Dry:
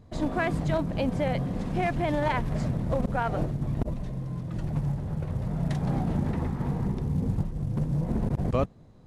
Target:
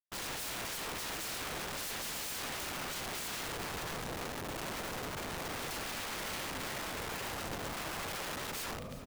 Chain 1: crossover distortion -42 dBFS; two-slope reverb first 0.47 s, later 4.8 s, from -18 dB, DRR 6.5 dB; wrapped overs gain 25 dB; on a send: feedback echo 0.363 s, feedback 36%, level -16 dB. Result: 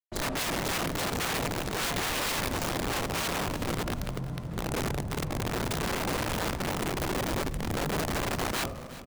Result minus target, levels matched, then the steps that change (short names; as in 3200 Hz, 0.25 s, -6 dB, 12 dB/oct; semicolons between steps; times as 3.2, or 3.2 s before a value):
wrapped overs: distortion -25 dB
change: wrapped overs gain 35 dB